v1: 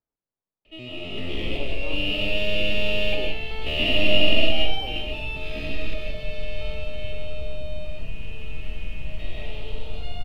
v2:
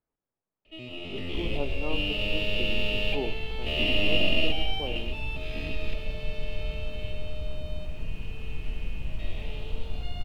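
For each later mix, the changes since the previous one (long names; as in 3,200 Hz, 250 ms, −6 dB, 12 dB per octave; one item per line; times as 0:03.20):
speech +5.0 dB
first sound: send −10.5 dB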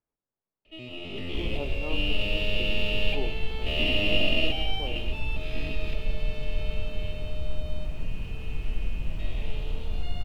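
speech −3.0 dB
second sound: send on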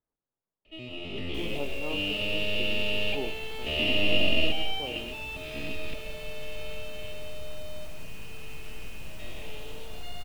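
second sound: add spectral tilt +3.5 dB per octave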